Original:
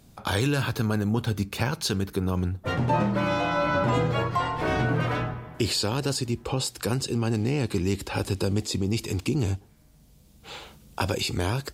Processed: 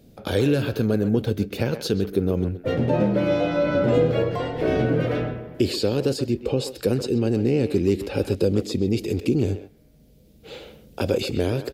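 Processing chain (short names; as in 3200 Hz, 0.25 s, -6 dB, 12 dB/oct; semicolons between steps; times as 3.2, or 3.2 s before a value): graphic EQ 250/500/1000/8000 Hz +4/+11/-12/-7 dB; speakerphone echo 0.13 s, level -10 dB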